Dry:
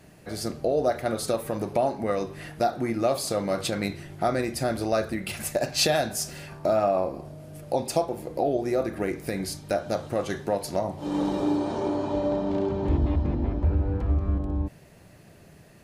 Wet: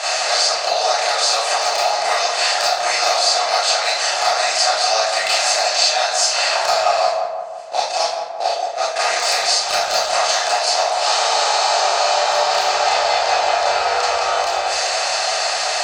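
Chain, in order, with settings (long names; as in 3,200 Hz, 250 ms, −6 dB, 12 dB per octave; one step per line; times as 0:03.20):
compressor on every frequency bin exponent 0.4
elliptic band-pass filter 710–7,600 Hz, stop band 40 dB
0:06.78–0:08.96: noise gate −23 dBFS, range −24 dB
reverb reduction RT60 0.76 s
dynamic equaliser 5,000 Hz, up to +5 dB, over −43 dBFS, Q 0.72
downward compressor 12 to 1, threshold −28 dBFS, peak gain reduction 14.5 dB
hard clipping −18.5 dBFS, distortion −29 dB
feedback echo with a low-pass in the loop 172 ms, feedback 63%, low-pass 1,300 Hz, level −4.5 dB
convolution reverb RT60 0.55 s, pre-delay 25 ms, DRR −8.5 dB
level +6 dB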